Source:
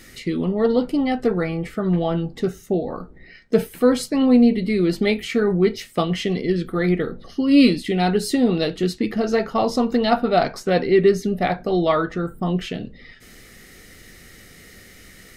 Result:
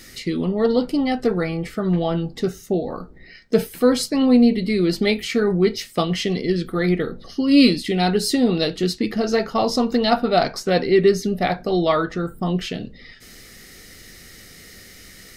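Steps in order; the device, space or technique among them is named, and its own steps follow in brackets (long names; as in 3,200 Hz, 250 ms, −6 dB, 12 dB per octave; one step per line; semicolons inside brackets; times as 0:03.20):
presence and air boost (parametric band 4,900 Hz +6 dB 0.83 octaves; high-shelf EQ 9,600 Hz +5 dB)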